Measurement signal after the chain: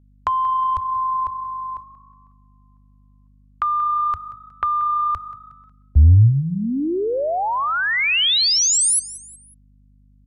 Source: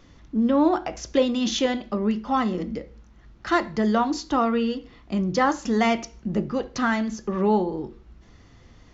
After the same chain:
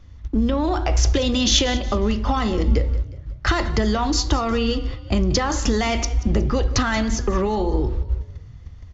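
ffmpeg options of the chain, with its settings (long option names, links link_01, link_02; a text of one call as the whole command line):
ffmpeg -i in.wav -filter_complex "[0:a]agate=range=-16dB:threshold=-46dB:ratio=16:detection=peak,lowshelf=frequency=120:width_type=q:width=3:gain=12,asplit=2[link_01][link_02];[link_02]acontrast=82,volume=1.5dB[link_03];[link_01][link_03]amix=inputs=2:normalize=0,alimiter=limit=-7.5dB:level=0:latency=1:release=18,acrossover=split=130|3000[link_04][link_05][link_06];[link_05]acompressor=threshold=-21dB:ratio=6[link_07];[link_04][link_07][link_06]amix=inputs=3:normalize=0,aeval=exprs='val(0)+0.00224*(sin(2*PI*50*n/s)+sin(2*PI*2*50*n/s)/2+sin(2*PI*3*50*n/s)/3+sin(2*PI*4*50*n/s)/4+sin(2*PI*5*50*n/s)/5)':channel_layout=same,asplit=2[link_08][link_09];[link_09]asplit=3[link_10][link_11][link_12];[link_10]adelay=182,afreqshift=30,volume=-17.5dB[link_13];[link_11]adelay=364,afreqshift=60,volume=-25dB[link_14];[link_12]adelay=546,afreqshift=90,volume=-32.6dB[link_15];[link_13][link_14][link_15]amix=inputs=3:normalize=0[link_16];[link_08][link_16]amix=inputs=2:normalize=0,aresample=32000,aresample=44100,volume=1dB" out.wav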